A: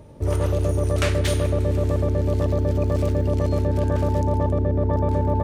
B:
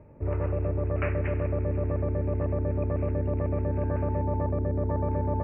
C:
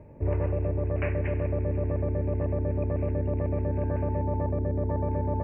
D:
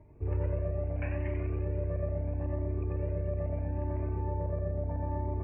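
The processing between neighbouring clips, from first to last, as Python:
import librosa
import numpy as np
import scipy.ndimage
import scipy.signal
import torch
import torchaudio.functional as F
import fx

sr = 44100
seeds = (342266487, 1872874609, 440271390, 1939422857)

y1 = scipy.signal.sosfilt(scipy.signal.butter(16, 2600.0, 'lowpass', fs=sr, output='sos'), x)
y1 = y1 * 10.0 ** (-6.5 / 20.0)
y2 = fx.peak_eq(y1, sr, hz=1300.0, db=-12.5, octaves=0.22)
y2 = fx.rider(y2, sr, range_db=10, speed_s=0.5)
y3 = fx.echo_feedback(y2, sr, ms=92, feedback_pct=55, wet_db=-5.5)
y3 = fx.comb_cascade(y3, sr, direction='rising', hz=0.76)
y3 = y3 * 10.0 ** (-4.0 / 20.0)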